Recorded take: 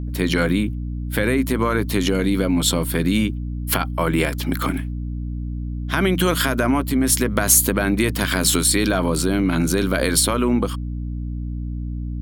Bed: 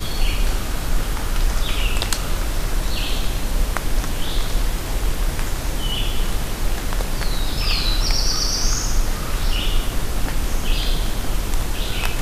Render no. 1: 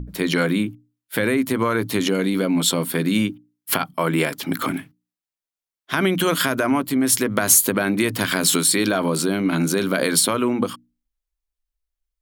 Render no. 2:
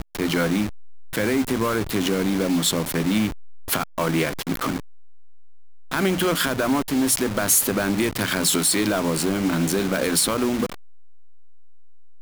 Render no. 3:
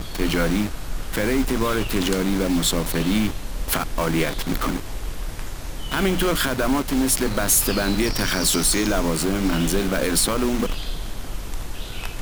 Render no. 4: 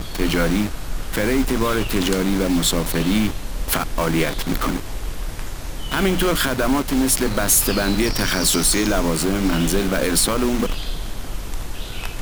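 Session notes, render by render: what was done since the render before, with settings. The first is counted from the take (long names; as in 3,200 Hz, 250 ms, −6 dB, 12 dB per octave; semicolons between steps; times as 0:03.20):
mains-hum notches 60/120/180/240/300 Hz
hold until the input has moved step −23.5 dBFS; soft clipping −12 dBFS, distortion −16 dB
mix in bed −8.5 dB
level +2 dB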